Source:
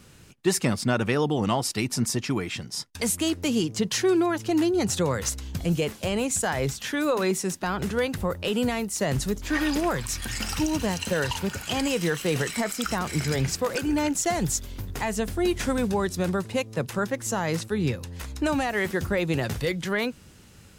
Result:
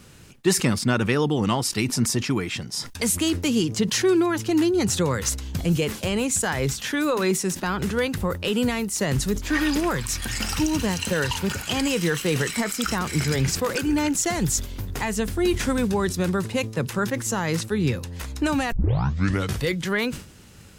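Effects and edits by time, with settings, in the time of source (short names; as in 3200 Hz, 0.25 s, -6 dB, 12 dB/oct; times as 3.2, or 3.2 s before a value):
18.72 tape start 0.88 s
whole clip: dynamic EQ 670 Hz, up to -6 dB, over -41 dBFS, Q 2.2; sustainer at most 120 dB/s; gain +3 dB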